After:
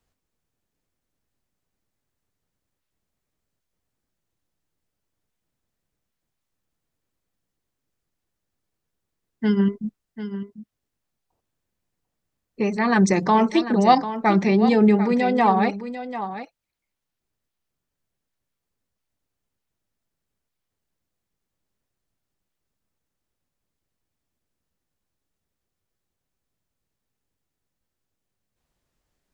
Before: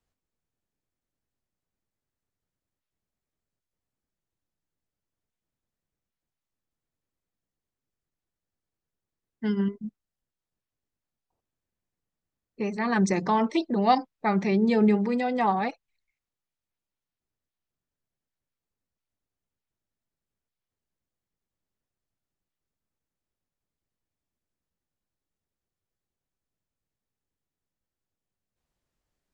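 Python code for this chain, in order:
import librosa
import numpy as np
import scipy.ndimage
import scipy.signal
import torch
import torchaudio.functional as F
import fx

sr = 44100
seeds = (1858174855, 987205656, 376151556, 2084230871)

p1 = fx.rider(x, sr, range_db=10, speed_s=0.5)
p2 = x + F.gain(torch.from_numpy(p1), 0.0).numpy()
p3 = fx.dmg_crackle(p2, sr, seeds[0], per_s=21.0, level_db=-40.0, at=(13.04, 13.46), fade=0.02)
y = p3 + 10.0 ** (-11.5 / 20.0) * np.pad(p3, (int(744 * sr / 1000.0), 0))[:len(p3)]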